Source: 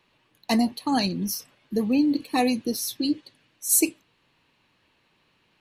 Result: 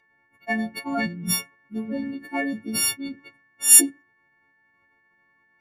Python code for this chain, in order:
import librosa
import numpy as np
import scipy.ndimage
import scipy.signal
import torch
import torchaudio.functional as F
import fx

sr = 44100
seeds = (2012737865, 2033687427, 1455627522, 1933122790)

y = fx.freq_snap(x, sr, grid_st=4)
y = fx.hum_notches(y, sr, base_hz=60, count=6)
y = fx.formant_shift(y, sr, semitones=-3)
y = y * 10.0 ** (-5.0 / 20.0)